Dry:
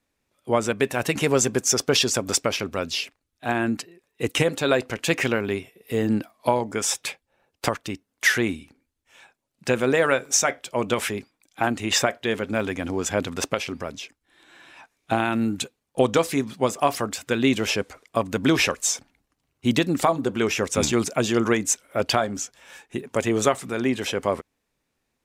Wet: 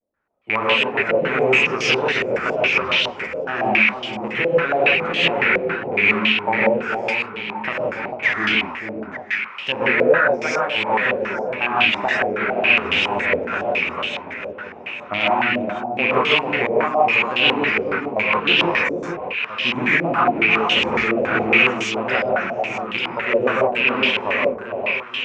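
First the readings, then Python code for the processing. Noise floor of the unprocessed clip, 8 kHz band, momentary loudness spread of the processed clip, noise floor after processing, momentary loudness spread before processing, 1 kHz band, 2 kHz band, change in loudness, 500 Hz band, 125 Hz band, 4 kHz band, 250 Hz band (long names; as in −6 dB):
−78 dBFS, below −15 dB, 9 LU, −35 dBFS, 11 LU, +7.0 dB, +11.0 dB, +5.5 dB, +4.0 dB, −3.0 dB, +6.5 dB, −1.0 dB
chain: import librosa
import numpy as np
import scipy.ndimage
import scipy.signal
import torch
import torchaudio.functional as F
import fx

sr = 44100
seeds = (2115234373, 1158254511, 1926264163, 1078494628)

y = fx.rattle_buzz(x, sr, strikes_db=-28.0, level_db=-9.0)
y = fx.low_shelf(y, sr, hz=180.0, db=-8.0)
y = fx.wow_flutter(y, sr, seeds[0], rate_hz=2.1, depth_cents=140.0)
y = fx.echo_alternate(y, sr, ms=445, hz=1000.0, feedback_pct=67, wet_db=-5.0)
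y = fx.rev_gated(y, sr, seeds[1], gate_ms=200, shape='rising', drr_db=-6.5)
y = fx.filter_held_lowpass(y, sr, hz=7.2, low_hz=570.0, high_hz=3100.0)
y = y * librosa.db_to_amplitude(-7.5)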